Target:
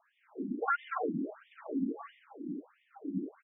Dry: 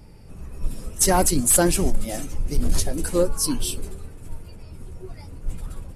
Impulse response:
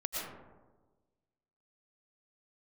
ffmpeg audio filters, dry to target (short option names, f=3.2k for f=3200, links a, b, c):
-filter_complex "[0:a]highpass=50,lowshelf=f=370:g=-5.5,asplit=4[a][b][c][d];[b]adelay=257,afreqshift=48,volume=-15.5dB[e];[c]adelay=514,afreqshift=96,volume=-24.4dB[f];[d]adelay=771,afreqshift=144,volume=-33.2dB[g];[a][e][f][g]amix=inputs=4:normalize=0,acrossover=split=140|2200[h][i][j];[h]aeval=exprs='0.15*sin(PI/2*6.31*val(0)/0.15)':c=same[k];[k][i][j]amix=inputs=3:normalize=0,afreqshift=83[l];[1:a]atrim=start_sample=2205,afade=t=out:st=0.18:d=0.01,atrim=end_sample=8379,asetrate=57330,aresample=44100[m];[l][m]afir=irnorm=-1:irlink=0,asetrate=76440,aresample=44100,afftfilt=real='re*between(b*sr/1024,240*pow(2600/240,0.5+0.5*sin(2*PI*1.5*pts/sr))/1.41,240*pow(2600/240,0.5+0.5*sin(2*PI*1.5*pts/sr))*1.41)':imag='im*between(b*sr/1024,240*pow(2600/240,0.5+0.5*sin(2*PI*1.5*pts/sr))/1.41,240*pow(2600/240,0.5+0.5*sin(2*PI*1.5*pts/sr))*1.41)':win_size=1024:overlap=0.75,volume=-6dB"